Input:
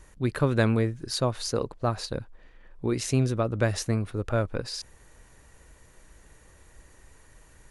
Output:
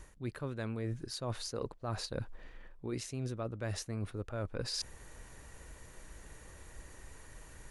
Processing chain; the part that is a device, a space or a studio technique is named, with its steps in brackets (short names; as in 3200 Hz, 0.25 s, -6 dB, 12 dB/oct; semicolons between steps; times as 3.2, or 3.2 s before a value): compression on the reversed sound (reverse; compressor 20:1, threshold -36 dBFS, peak gain reduction 20 dB; reverse); gain +2 dB